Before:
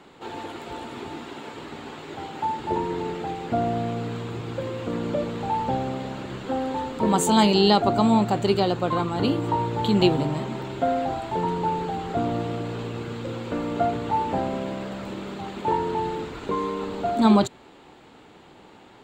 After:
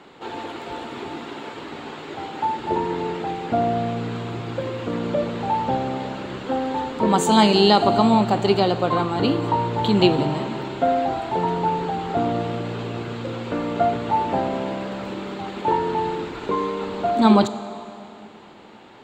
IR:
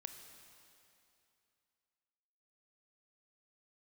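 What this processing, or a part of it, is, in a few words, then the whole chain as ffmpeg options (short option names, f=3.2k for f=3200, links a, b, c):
filtered reverb send: -filter_complex "[0:a]asplit=2[a][b];[b]highpass=f=210:p=1,lowpass=7.2k[c];[1:a]atrim=start_sample=2205[d];[c][d]afir=irnorm=-1:irlink=0,volume=5.5dB[e];[a][e]amix=inputs=2:normalize=0,volume=-2.5dB"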